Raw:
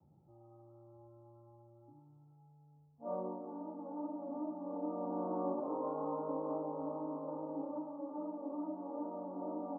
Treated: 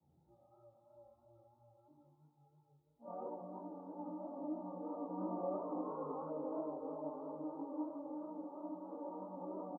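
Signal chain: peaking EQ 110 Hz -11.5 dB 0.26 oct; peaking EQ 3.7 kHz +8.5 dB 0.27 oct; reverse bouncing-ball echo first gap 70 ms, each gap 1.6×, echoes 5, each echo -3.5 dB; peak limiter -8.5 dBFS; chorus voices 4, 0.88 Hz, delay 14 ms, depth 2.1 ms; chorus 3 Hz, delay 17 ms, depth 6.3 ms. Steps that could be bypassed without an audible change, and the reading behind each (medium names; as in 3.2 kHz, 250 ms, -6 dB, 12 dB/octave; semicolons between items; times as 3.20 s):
peaking EQ 3.7 kHz: input has nothing above 1.3 kHz; peak limiter -8.5 dBFS: peak at its input -23.0 dBFS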